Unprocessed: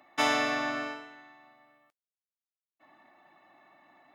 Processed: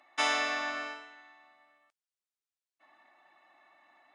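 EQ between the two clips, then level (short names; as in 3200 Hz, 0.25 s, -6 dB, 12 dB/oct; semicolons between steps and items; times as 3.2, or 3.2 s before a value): HPF 930 Hz 6 dB/oct; brick-wall FIR low-pass 10000 Hz; 0.0 dB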